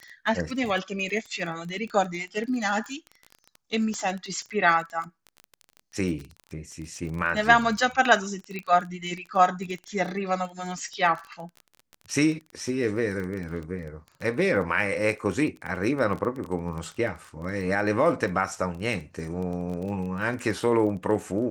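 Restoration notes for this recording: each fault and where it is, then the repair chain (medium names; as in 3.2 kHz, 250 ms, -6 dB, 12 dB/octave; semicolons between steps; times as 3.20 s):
crackle 21 per s -32 dBFS
3.94 s: pop -22 dBFS
8.59 s: pop -21 dBFS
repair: de-click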